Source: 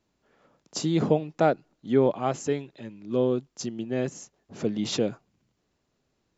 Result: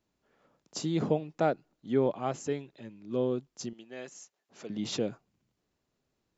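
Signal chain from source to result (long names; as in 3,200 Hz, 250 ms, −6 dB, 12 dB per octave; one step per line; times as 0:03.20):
0:03.73–0:04.70: high-pass filter 1,200 Hz 6 dB per octave
level −5.5 dB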